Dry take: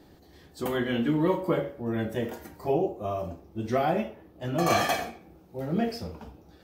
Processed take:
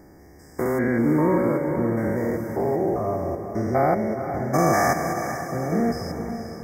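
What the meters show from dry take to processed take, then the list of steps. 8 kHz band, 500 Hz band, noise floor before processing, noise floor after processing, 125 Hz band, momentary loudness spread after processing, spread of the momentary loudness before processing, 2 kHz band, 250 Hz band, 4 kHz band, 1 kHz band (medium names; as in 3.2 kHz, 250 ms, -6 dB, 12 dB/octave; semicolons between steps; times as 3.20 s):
+5.5 dB, +6.0 dB, -55 dBFS, -48 dBFS, +6.5 dB, 8 LU, 14 LU, +5.0 dB, +6.5 dB, -5.0 dB, +6.0 dB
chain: spectrogram pixelated in time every 200 ms; brick-wall FIR band-stop 2.3–4.8 kHz; echo that smears into a reverb 464 ms, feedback 50%, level -8 dB; trim +7.5 dB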